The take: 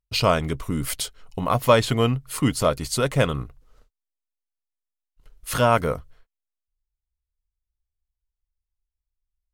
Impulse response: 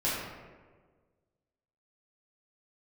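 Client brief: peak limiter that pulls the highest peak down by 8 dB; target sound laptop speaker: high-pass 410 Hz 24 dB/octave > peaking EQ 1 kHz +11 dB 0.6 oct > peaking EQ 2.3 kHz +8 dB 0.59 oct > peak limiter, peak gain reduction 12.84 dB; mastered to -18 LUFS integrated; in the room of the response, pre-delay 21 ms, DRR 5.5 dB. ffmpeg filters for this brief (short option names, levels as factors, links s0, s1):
-filter_complex "[0:a]alimiter=limit=0.266:level=0:latency=1,asplit=2[s0][s1];[1:a]atrim=start_sample=2205,adelay=21[s2];[s1][s2]afir=irnorm=-1:irlink=0,volume=0.178[s3];[s0][s3]amix=inputs=2:normalize=0,highpass=f=410:w=0.5412,highpass=f=410:w=1.3066,equalizer=f=1000:t=o:w=0.6:g=11,equalizer=f=2300:t=o:w=0.59:g=8,volume=2.99,alimiter=limit=0.447:level=0:latency=1"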